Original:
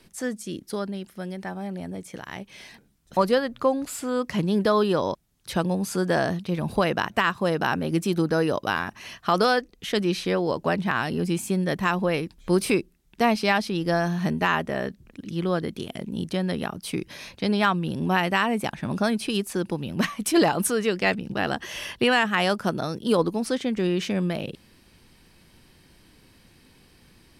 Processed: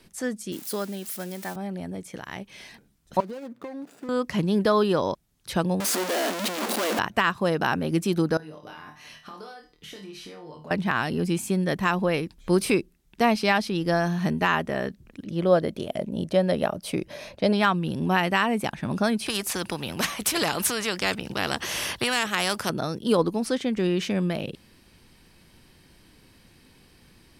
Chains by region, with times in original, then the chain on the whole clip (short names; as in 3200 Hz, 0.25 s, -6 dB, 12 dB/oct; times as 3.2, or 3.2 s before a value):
0.52–1.56 switching spikes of -29 dBFS + HPF 180 Hz
3.2–4.09 median filter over 41 samples + HPF 180 Hz 24 dB/oct + compressor 10:1, threshold -32 dBFS
5.8–6.99 infinite clipping + brick-wall FIR high-pass 200 Hz
8.37–10.71 resonator 150 Hz, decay 0.16 s, mix 80% + compressor 10:1, threshold -39 dBFS + flutter echo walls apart 4.4 m, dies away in 0.33 s
15.25–17.53 bell 600 Hz +14 dB 0.46 oct + mismatched tape noise reduction decoder only
19.26–22.7 HPF 63 Hz + spectral compressor 2:1
whole clip: dry